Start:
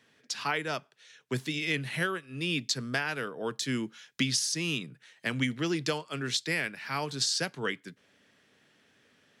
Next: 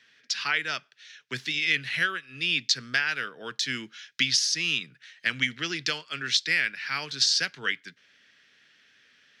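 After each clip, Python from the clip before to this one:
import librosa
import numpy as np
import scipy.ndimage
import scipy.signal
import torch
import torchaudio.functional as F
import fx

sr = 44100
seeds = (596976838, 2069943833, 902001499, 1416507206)

y = fx.band_shelf(x, sr, hz=2900.0, db=14.0, octaves=2.5)
y = F.gain(torch.from_numpy(y), -7.0).numpy()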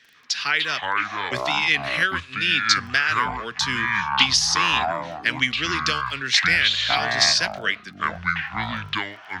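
y = fx.echo_pitch(x, sr, ms=146, semitones=-7, count=2, db_per_echo=-3.0)
y = fx.dmg_crackle(y, sr, seeds[0], per_s=10.0, level_db=-42.0)
y = F.gain(torch.from_numpy(y), 4.5).numpy()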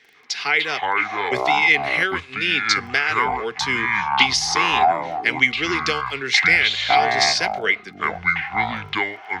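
y = fx.small_body(x, sr, hz=(420.0, 760.0, 2100.0), ring_ms=25, db=14)
y = F.gain(torch.from_numpy(y), -2.0).numpy()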